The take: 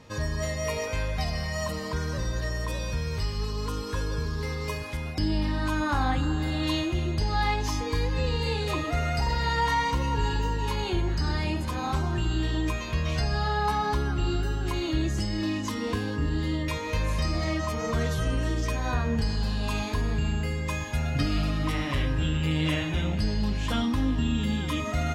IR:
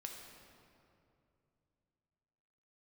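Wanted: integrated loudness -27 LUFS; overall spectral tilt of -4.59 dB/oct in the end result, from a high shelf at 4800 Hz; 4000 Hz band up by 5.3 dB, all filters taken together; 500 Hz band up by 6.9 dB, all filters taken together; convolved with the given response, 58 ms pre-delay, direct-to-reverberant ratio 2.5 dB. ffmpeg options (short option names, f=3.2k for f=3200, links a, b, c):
-filter_complex "[0:a]equalizer=f=500:t=o:g=8.5,equalizer=f=4k:t=o:g=8.5,highshelf=f=4.8k:g=-4,asplit=2[a][b];[1:a]atrim=start_sample=2205,adelay=58[c];[b][c]afir=irnorm=-1:irlink=0,volume=0.5dB[d];[a][d]amix=inputs=2:normalize=0,volume=-3.5dB"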